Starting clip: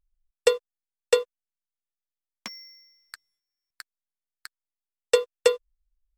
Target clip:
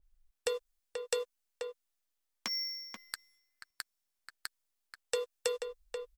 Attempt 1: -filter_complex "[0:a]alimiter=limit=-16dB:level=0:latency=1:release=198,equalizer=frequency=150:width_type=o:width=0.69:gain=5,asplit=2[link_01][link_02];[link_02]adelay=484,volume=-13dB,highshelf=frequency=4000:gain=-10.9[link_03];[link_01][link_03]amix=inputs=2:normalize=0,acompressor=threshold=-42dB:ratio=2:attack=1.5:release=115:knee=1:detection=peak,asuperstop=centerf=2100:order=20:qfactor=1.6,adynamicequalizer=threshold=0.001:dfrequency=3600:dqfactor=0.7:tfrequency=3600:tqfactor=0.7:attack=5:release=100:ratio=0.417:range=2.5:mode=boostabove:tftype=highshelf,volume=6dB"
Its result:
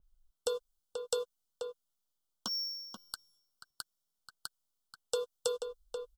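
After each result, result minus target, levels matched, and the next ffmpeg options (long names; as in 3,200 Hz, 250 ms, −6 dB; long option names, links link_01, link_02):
2,000 Hz band −8.5 dB; 125 Hz band +4.0 dB
-filter_complex "[0:a]alimiter=limit=-16dB:level=0:latency=1:release=198,equalizer=frequency=150:width_type=o:width=0.69:gain=5,asplit=2[link_01][link_02];[link_02]adelay=484,volume=-13dB,highshelf=frequency=4000:gain=-10.9[link_03];[link_01][link_03]amix=inputs=2:normalize=0,acompressor=threshold=-42dB:ratio=2:attack=1.5:release=115:knee=1:detection=peak,adynamicequalizer=threshold=0.001:dfrequency=3600:dqfactor=0.7:tfrequency=3600:tqfactor=0.7:attack=5:release=100:ratio=0.417:range=2.5:mode=boostabove:tftype=highshelf,volume=6dB"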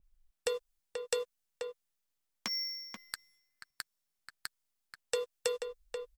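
125 Hz band +3.5 dB
-filter_complex "[0:a]alimiter=limit=-16dB:level=0:latency=1:release=198,equalizer=frequency=150:width_type=o:width=0.69:gain=-5.5,asplit=2[link_01][link_02];[link_02]adelay=484,volume=-13dB,highshelf=frequency=4000:gain=-10.9[link_03];[link_01][link_03]amix=inputs=2:normalize=0,acompressor=threshold=-42dB:ratio=2:attack=1.5:release=115:knee=1:detection=peak,adynamicequalizer=threshold=0.001:dfrequency=3600:dqfactor=0.7:tfrequency=3600:tqfactor=0.7:attack=5:release=100:ratio=0.417:range=2.5:mode=boostabove:tftype=highshelf,volume=6dB"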